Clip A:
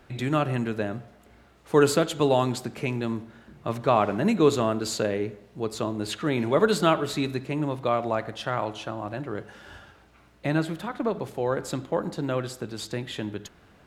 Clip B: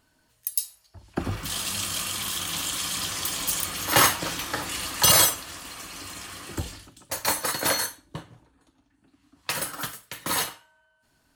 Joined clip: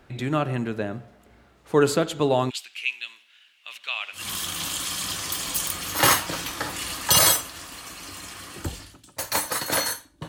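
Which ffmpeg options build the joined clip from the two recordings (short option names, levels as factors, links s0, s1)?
-filter_complex "[0:a]asplit=3[s0][s1][s2];[s0]afade=t=out:st=2.49:d=0.02[s3];[s1]highpass=f=2800:t=q:w=4.4,afade=t=in:st=2.49:d=0.02,afade=t=out:st=4.3:d=0.02[s4];[s2]afade=t=in:st=4.3:d=0.02[s5];[s3][s4][s5]amix=inputs=3:normalize=0,apad=whole_dur=10.28,atrim=end=10.28,atrim=end=4.3,asetpts=PTS-STARTPTS[s6];[1:a]atrim=start=2.05:end=8.21,asetpts=PTS-STARTPTS[s7];[s6][s7]acrossfade=d=0.18:c1=tri:c2=tri"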